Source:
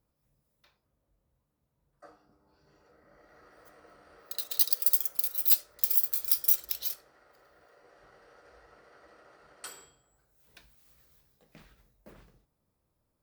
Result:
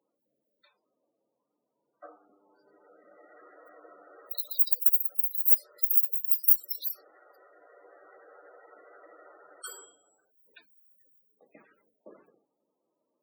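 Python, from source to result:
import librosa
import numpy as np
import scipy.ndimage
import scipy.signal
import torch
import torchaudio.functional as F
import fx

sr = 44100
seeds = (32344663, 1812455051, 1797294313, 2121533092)

y = fx.block_float(x, sr, bits=3, at=(6.79, 9.69))
y = fx.spec_topn(y, sr, count=32)
y = scipy.signal.sosfilt(scipy.signal.butter(4, 280.0, 'highpass', fs=sr, output='sos'), y)
y = F.gain(torch.from_numpy(y), 5.5).numpy()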